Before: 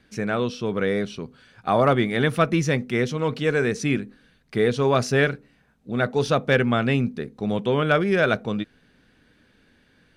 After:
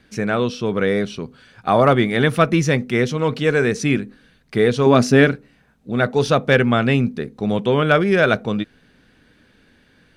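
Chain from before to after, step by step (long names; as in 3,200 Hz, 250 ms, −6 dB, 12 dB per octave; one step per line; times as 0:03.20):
0:04.86–0:05.32: parametric band 250 Hz +9.5 dB 0.78 octaves
level +4.5 dB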